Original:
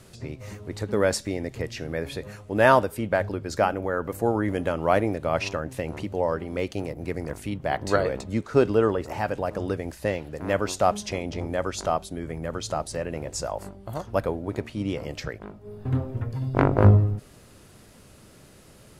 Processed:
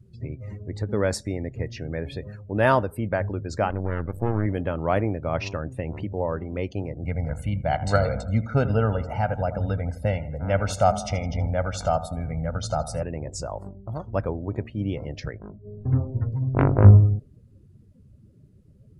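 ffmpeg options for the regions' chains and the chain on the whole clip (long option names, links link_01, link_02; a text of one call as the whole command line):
ffmpeg -i in.wav -filter_complex "[0:a]asettb=1/sr,asplit=3[link_01][link_02][link_03];[link_01]atrim=end=3.704[link_04];[link_02]atrim=start=3.7:end=4.46,asetpts=PTS-STARTPTS,afade=type=in:duration=0.004:curve=qsin,afade=type=out:start_time=0.756:duration=0.004:curve=qsin,lowshelf=frequency=110:gain=11.5,aeval=exprs='max(val(0),0)':channel_layout=same[link_05];[link_03]atrim=start=4.456[link_06];[link_04][link_05]acrossfade=duration=0.004:curve1=hsin:curve2=qsin[link_07];[link_07][link_06]acrossfade=duration=0.004:curve1=qsin:curve2=hsin,asettb=1/sr,asplit=3[link_08][link_09][link_10];[link_08]atrim=end=7.044[link_11];[link_09]atrim=start=7.04:end=13.03,asetpts=PTS-STARTPTS,afade=type=in:duration=0.004:curve=qsin,afade=type=out:start_time=5.986:duration=0.004:curve=qsin,aecho=1:1:1.4:0.83,atrim=end_sample=264159,aecho=1:1:81|162|243|324|405|486:0.2|0.12|0.0718|0.0431|0.0259|0.0155,atrim=end_sample=264159[link_12];[link_10]atrim=start=13.026[link_13];[link_11][link_12]acrossfade=duration=0.004:curve1=hsin:curve2=qsin[link_14];[link_14][link_13]acrossfade=duration=0.004:curve1=qsin:curve2=hsin,afftdn=noise_reduction=24:noise_floor=-43,equalizer=frequency=91:width_type=o:width=2.2:gain=8,volume=-3dB" out.wav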